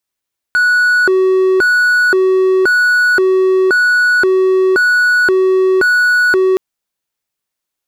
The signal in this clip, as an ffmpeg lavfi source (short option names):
-f lavfi -i "aevalsrc='0.501*(1-4*abs(mod((923*t+547/0.95*(0.5-abs(mod(0.95*t,1)-0.5)))+0.25,1)-0.5))':d=6.02:s=44100"